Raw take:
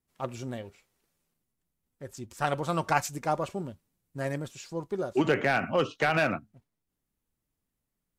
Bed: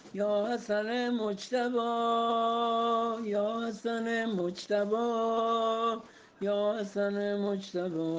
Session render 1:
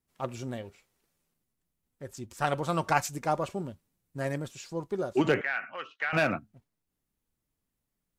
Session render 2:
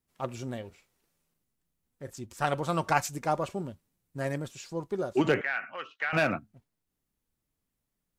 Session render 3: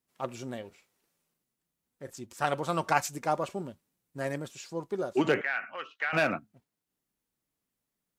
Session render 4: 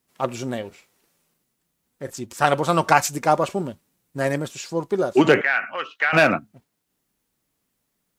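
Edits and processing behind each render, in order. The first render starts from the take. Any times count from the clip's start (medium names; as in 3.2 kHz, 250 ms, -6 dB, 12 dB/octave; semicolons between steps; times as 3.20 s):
5.41–6.13 s: band-pass filter 1.8 kHz, Q 2.3
0.67–2.10 s: doubling 36 ms -11 dB
high-pass 45 Hz; peaking EQ 72 Hz -10.5 dB 1.7 oct
trim +10.5 dB; peak limiter -1 dBFS, peak gain reduction 2.5 dB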